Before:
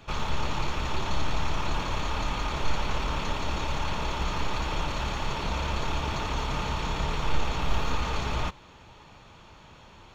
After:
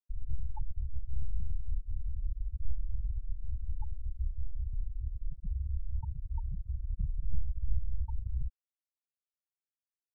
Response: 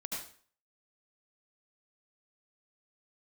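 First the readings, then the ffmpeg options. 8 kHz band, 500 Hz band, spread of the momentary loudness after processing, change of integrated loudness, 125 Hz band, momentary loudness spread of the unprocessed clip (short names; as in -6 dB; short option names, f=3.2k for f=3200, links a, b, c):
n/a, under -40 dB, 4 LU, -9.0 dB, -5.0 dB, 1 LU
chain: -af "afftfilt=real='re*gte(hypot(re,im),0.224)':imag='im*gte(hypot(re,im),0.224)':win_size=1024:overlap=0.75,volume=-1.5dB"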